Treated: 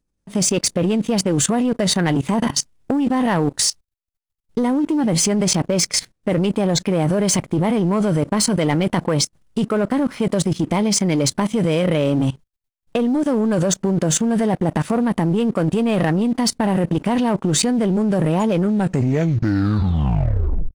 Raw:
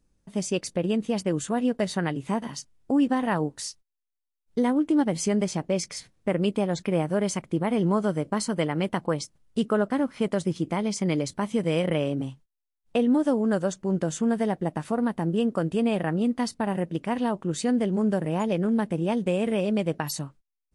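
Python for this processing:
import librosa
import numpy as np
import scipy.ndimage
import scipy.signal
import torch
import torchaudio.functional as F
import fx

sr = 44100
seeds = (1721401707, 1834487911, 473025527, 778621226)

p1 = fx.tape_stop_end(x, sr, length_s=2.15)
p2 = fx.over_compress(p1, sr, threshold_db=-30.0, ratio=-0.5)
p3 = p1 + (p2 * 10.0 ** (2.5 / 20.0))
p4 = fx.leveller(p3, sr, passes=2)
p5 = fx.level_steps(p4, sr, step_db=19)
y = p5 * 10.0 ** (1.5 / 20.0)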